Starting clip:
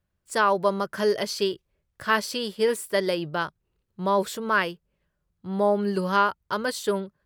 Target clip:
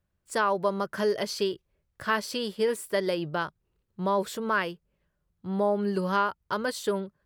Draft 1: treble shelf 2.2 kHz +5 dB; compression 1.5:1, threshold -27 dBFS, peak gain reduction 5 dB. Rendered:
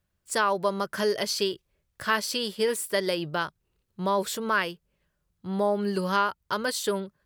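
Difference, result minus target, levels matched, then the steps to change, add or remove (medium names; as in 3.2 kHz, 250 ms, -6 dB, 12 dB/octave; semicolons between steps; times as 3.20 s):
4 kHz band +4.0 dB
change: treble shelf 2.2 kHz -3 dB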